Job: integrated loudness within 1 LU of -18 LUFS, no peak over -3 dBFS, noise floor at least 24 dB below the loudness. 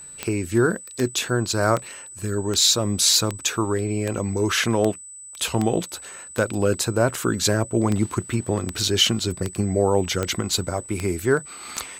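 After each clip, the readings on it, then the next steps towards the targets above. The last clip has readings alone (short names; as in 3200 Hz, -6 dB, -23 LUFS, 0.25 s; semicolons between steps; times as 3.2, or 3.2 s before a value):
clicks 16; steady tone 8000 Hz; tone level -38 dBFS; loudness -22.5 LUFS; peak -4.5 dBFS; loudness target -18.0 LUFS
-> de-click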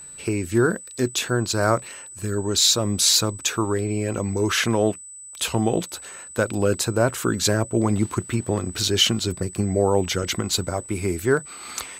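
clicks 0; steady tone 8000 Hz; tone level -38 dBFS
-> notch 8000 Hz, Q 30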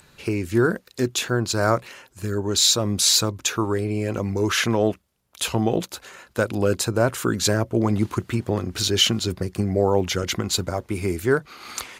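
steady tone none; loudness -22.5 LUFS; peak -5.0 dBFS; loudness target -18.0 LUFS
-> gain +4.5 dB; limiter -3 dBFS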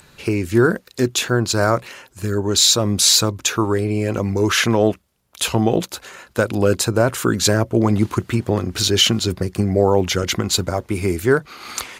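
loudness -18.0 LUFS; peak -3.0 dBFS; noise floor -54 dBFS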